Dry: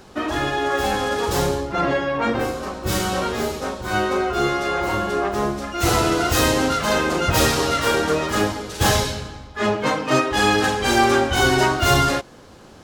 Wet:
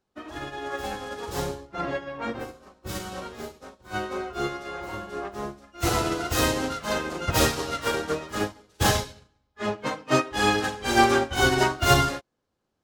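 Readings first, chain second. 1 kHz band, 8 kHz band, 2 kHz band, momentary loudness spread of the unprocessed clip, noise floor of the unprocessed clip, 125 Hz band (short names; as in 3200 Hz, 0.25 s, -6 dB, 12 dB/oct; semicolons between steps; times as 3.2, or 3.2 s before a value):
-6.5 dB, -6.0 dB, -6.0 dB, 7 LU, -44 dBFS, -6.0 dB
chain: upward expander 2.5:1, over -36 dBFS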